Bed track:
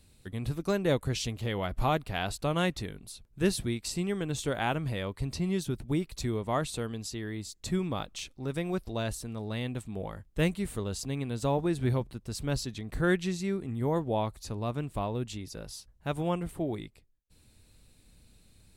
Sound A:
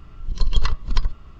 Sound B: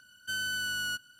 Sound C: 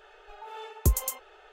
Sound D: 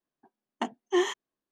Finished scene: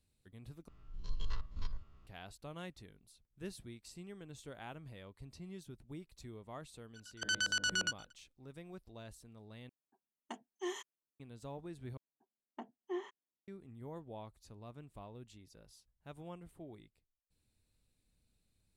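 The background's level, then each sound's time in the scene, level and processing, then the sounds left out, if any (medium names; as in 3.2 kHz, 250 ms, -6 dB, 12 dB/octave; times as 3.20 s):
bed track -18.5 dB
0.68 s: replace with A -16.5 dB + spectrogram pixelated in time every 50 ms
6.94 s: add B -0.5 dB, fades 0.02 s + LFO low-pass square 8.6 Hz 480–6100 Hz
9.69 s: replace with D -15.5 dB + treble shelf 6.5 kHz +11.5 dB
11.97 s: replace with D -14.5 dB + low-pass 1.1 kHz 6 dB/octave
not used: C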